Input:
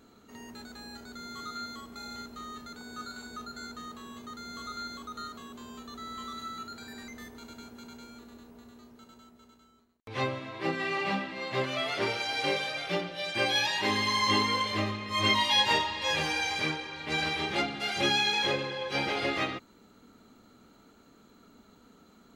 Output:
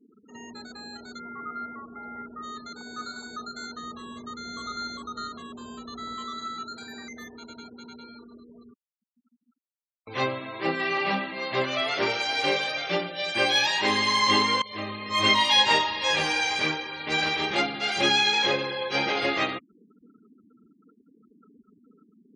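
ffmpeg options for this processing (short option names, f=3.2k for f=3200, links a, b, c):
-filter_complex "[0:a]asplit=3[a][b][c];[a]afade=t=out:st=1.18:d=0.02[d];[b]lowpass=f=2.2k:w=0.5412,lowpass=f=2.2k:w=1.3066,afade=t=in:st=1.18:d=0.02,afade=t=out:st=2.42:d=0.02[e];[c]afade=t=in:st=2.42:d=0.02[f];[d][e][f]amix=inputs=3:normalize=0,asettb=1/sr,asplit=3[g][h][i];[g]atrim=end=3.834[j];[h]atrim=start=3.83:end=6.16,asetpts=PTS-STARTPTS,afade=t=in:d=0.004:c=qsin,afade=t=out:st=2.326:d=0.004:c=qsin,lowshelf=f=120:g=9.5[k];[i]atrim=start=6.156[l];[j][k]acrossfade=d=0.004:c1=hsin:c2=qsin[m];[m][l]acrossfade=d=0.004:c1=qsin:c2=hsin,asplit=3[n][o][p];[n]atrim=end=8.74,asetpts=PTS-STARTPTS,afade=t=out:st=8.736:d=0.004:c=hsin[q];[o]atrim=start=8.74:end=14.62,asetpts=PTS-STARTPTS,afade=t=in:d=1.5,afade=t=out:st=5.876:d=0.004:c=hsin:silence=0.125893[r];[p]atrim=start=14.62,asetpts=PTS-STARTPTS,afade=t=in:d=0.51:silence=0.125893[s];[q][r][s]concat=n=3:v=0:a=1,lowpass=12k,afftfilt=real='re*gte(hypot(re,im),0.00501)':imag='im*gte(hypot(re,im),0.00501)':win_size=1024:overlap=0.75,highpass=f=210:p=1,volume=5dB"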